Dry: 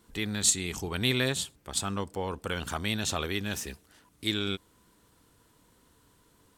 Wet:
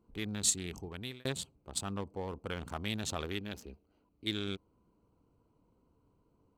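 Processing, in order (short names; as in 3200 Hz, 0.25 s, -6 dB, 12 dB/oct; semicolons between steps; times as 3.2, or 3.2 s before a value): Wiener smoothing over 25 samples; 0.68–1.25 fade out; 3.39–4.27 ten-band EQ 125 Hz -7 dB, 1000 Hz -4 dB, 4000 Hz +3 dB, 8000 Hz -8 dB; gain -5 dB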